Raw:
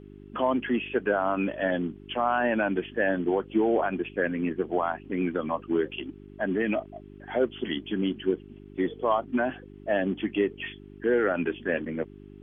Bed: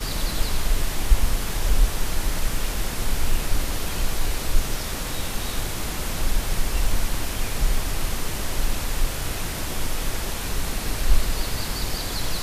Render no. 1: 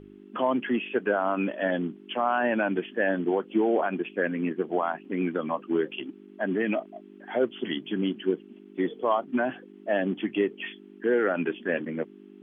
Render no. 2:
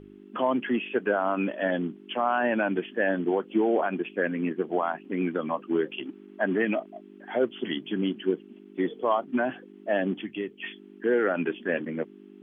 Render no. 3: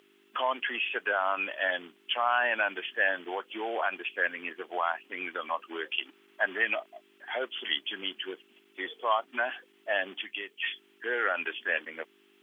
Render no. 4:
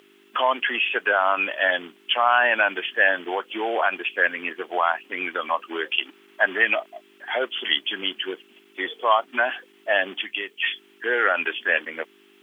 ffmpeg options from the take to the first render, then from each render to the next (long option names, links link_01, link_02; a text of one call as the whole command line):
ffmpeg -i in.wav -af "bandreject=frequency=50:width_type=h:width=4,bandreject=frequency=100:width_type=h:width=4,bandreject=frequency=150:width_type=h:width=4" out.wav
ffmpeg -i in.wav -filter_complex "[0:a]asettb=1/sr,asplit=3[link_01][link_02][link_03];[link_01]atrim=end=6.054[link_04];[link_02]atrim=start=6.05:end=6.65,asetpts=PTS-STARTPTS,afade=type=in:duration=0.004:curve=qsin,afade=type=out:start_time=0.596:duration=0.004:curve=qsin,equalizer=frequency=1200:width_type=o:width=2.4:gain=4.5[link_05];[link_03]atrim=start=6.646[link_06];[link_04][link_05]acrossfade=duration=0.004:curve1=hsin:curve2=qsin[link_07];[link_07][link_06]acrossfade=duration=0.004:curve1=qsin:curve2=hsin,asplit=3[link_08][link_09][link_10];[link_08]afade=type=out:start_time=10.21:duration=0.02[link_11];[link_09]equalizer=frequency=690:width=0.31:gain=-9.5,afade=type=in:start_time=10.21:duration=0.02,afade=type=out:start_time=10.62:duration=0.02[link_12];[link_10]afade=type=in:start_time=10.62:duration=0.02[link_13];[link_11][link_12][link_13]amix=inputs=3:normalize=0" out.wav
ffmpeg -i in.wav -af "highpass=840,highshelf=frequency=2500:gain=11.5" out.wav
ffmpeg -i in.wav -af "volume=8dB" out.wav